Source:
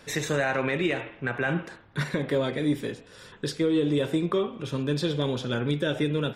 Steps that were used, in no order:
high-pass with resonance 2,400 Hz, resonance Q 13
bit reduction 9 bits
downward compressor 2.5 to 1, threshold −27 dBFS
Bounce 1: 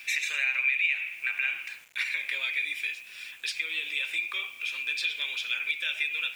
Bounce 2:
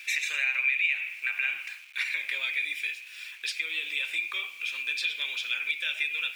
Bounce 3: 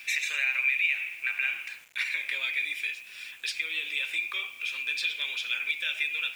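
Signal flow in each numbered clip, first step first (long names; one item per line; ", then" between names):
high-pass with resonance, then bit reduction, then downward compressor
bit reduction, then high-pass with resonance, then downward compressor
high-pass with resonance, then downward compressor, then bit reduction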